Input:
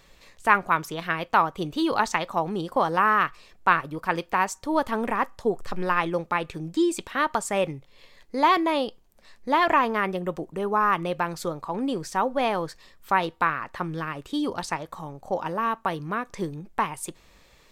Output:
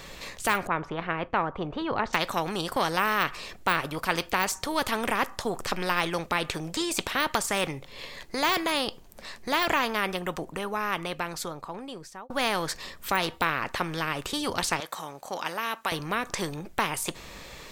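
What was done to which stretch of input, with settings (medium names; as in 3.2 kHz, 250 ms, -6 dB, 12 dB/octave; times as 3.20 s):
0.67–2.13 s: low-pass 1.1 kHz
9.50–12.30 s: fade out
14.80–15.92 s: high-pass 1.5 kHz 6 dB/octave
whole clip: de-esser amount 70%; spectrum-flattening compressor 2:1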